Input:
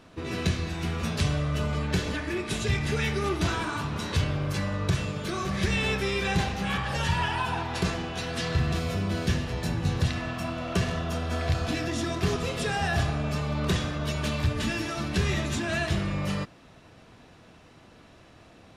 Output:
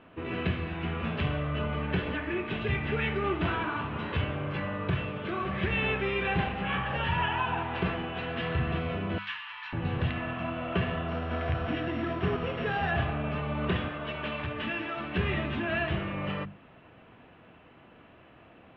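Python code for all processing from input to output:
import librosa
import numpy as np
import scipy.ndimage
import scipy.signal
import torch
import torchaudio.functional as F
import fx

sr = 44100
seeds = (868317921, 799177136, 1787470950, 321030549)

y = fx.chain(x, sr, fx.ellip_highpass(hz=940.0, order=4, stop_db=40),
    fx.peak_eq(hz=7300.0, db=8.0, octaves=1.7), at=(9.18, 9.73))
y = fx.chain(y, sr, fx.sample_sort(block=8),
    fx.peak_eq(hz=1500.0, db=2.5, octaves=0.43), at=(11.08, 12.91))
y = fx.chain(y, sr, fx.lowpass(hz=11000.0, slope=12),
    fx.low_shelf(hz=240.0, db=-9.5), at=(13.88, 15.15))
y = scipy.signal.sosfilt(scipy.signal.ellip(4, 1.0, 80, 3000.0, 'lowpass', fs=sr, output='sos'), y)
y = fx.low_shelf(y, sr, hz=69.0, db=-7.5)
y = fx.hum_notches(y, sr, base_hz=50, count=4)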